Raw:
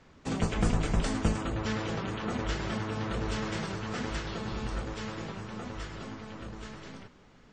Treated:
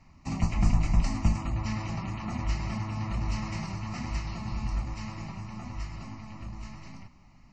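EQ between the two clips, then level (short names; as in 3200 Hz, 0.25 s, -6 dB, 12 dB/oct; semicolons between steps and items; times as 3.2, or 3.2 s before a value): low shelf 160 Hz +6.5 dB; fixed phaser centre 2300 Hz, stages 8; 0.0 dB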